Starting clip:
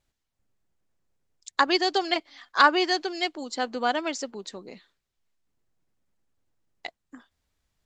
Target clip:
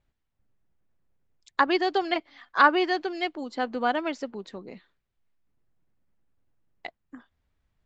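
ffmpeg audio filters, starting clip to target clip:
ffmpeg -i in.wav -filter_complex "[0:a]bass=frequency=250:gain=4,treble=frequency=4000:gain=-14,acrossover=split=6100[link_01][link_02];[link_02]acompressor=threshold=-55dB:ratio=4:attack=1:release=60[link_03];[link_01][link_03]amix=inputs=2:normalize=0" out.wav

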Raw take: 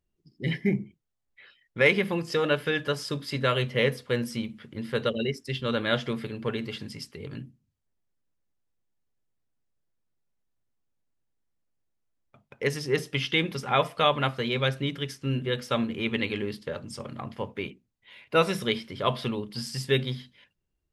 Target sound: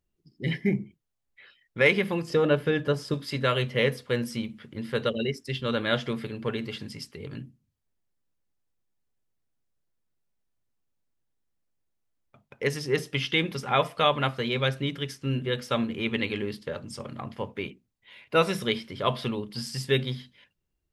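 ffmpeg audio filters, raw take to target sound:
ffmpeg -i in.wav -filter_complex "[0:a]asettb=1/sr,asplit=3[link_01][link_02][link_03];[link_01]atrim=end=2.304[link_04];[link_02]atrim=start=2.3:end=3.14,asetpts=PTS-STARTPTS,afade=type=in:duration=0.004:curve=qsin,afade=type=out:start_time=0.836:duration=0.004:curve=qsin,tiltshelf=frequency=920:gain=5.5[link_05];[link_03]atrim=start=3.136[link_06];[link_04][link_05]acrossfade=duration=0.004:curve1=hsin:curve2=qsin[link_07];[link_07][link_06]acrossfade=duration=0.004:curve1=qsin:curve2=hsin" out.wav

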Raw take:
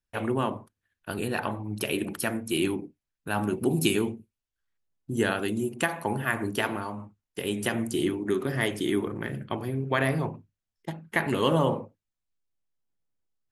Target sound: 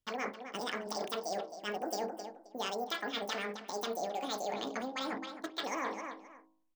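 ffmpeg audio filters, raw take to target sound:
ffmpeg -i in.wav -filter_complex "[0:a]asplit=2[link_01][link_02];[link_02]adelay=530,lowpass=frequency=2500:poles=1,volume=-18dB,asplit=2[link_03][link_04];[link_04]adelay=530,lowpass=frequency=2500:poles=1,volume=0.24[link_05];[link_01][link_03][link_05]amix=inputs=3:normalize=0,areverse,acompressor=threshold=-33dB:ratio=6,areverse,asetrate=88200,aresample=44100,bandreject=frequency=53.41:width_type=h:width=4,bandreject=frequency=106.82:width_type=h:width=4,bandreject=frequency=160.23:width_type=h:width=4,bandreject=frequency=213.64:width_type=h:width=4,bandreject=frequency=267.05:width_type=h:width=4,bandreject=frequency=320.46:width_type=h:width=4,bandreject=frequency=373.87:width_type=h:width=4,bandreject=frequency=427.28:width_type=h:width=4,bandreject=frequency=480.69:width_type=h:width=4,bandreject=frequency=534.1:width_type=h:width=4,bandreject=frequency=587.51:width_type=h:width=4,bandreject=frequency=640.92:width_type=h:width=4,bandreject=frequency=694.33:width_type=h:width=4,bandreject=frequency=747.74:width_type=h:width=4,bandreject=frequency=801.15:width_type=h:width=4,bandreject=frequency=854.56:width_type=h:width=4,bandreject=frequency=907.97:width_type=h:width=4,bandreject=frequency=961.38:width_type=h:width=4,bandreject=frequency=1014.79:width_type=h:width=4,bandreject=frequency=1068.2:width_type=h:width=4,bandreject=frequency=1121.61:width_type=h:width=4" out.wav

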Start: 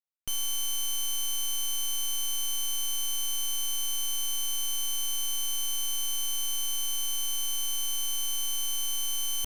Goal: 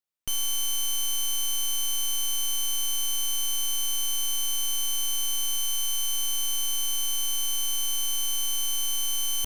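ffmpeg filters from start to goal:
ffmpeg -i in.wav -filter_complex "[0:a]asettb=1/sr,asplit=3[link_01][link_02][link_03];[link_01]atrim=end=5.574[link_04];[link_02]atrim=start=5.57:end=6.14,asetpts=PTS-STARTPTS,afade=type=in:duration=0.004:curve=qsin,afade=type=out:start_time=0.566:duration=0.004:curve=qsin,equalizer=frequency=310:width=1.2:gain=-7[link_05];[link_03]atrim=start=6.136[link_06];[link_04][link_05]acrossfade=duration=0.004:curve1=hsin:curve2=qsin[link_07];[link_07][link_06]acrossfade=duration=0.004:curve1=qsin:curve2=hsin,volume=3dB" out.wav

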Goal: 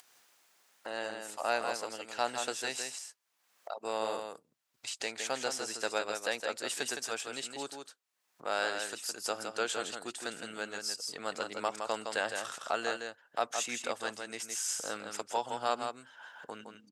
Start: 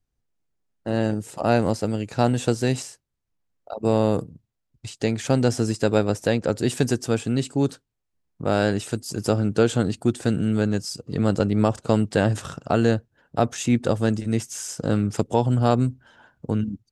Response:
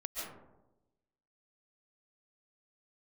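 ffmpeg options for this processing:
-af "aecho=1:1:163:0.501,acompressor=mode=upward:threshold=-23dB:ratio=2.5,highpass=910,volume=-4dB"

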